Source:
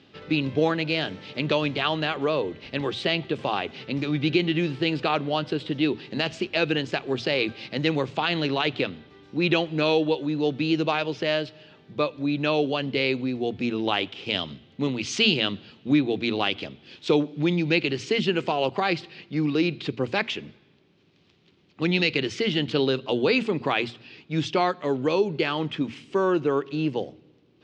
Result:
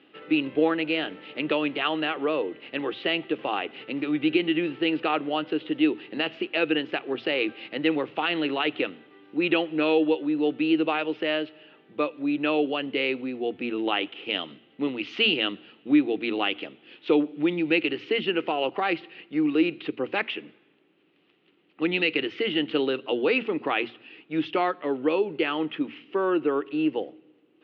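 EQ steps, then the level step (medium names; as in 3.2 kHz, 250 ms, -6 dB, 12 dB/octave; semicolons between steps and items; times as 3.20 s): cabinet simulation 230–3400 Hz, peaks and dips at 310 Hz +9 dB, 480 Hz +5 dB, 770 Hz +4 dB, 1.3 kHz +6 dB, 1.9 kHz +5 dB, 2.8 kHz +7 dB; -5.5 dB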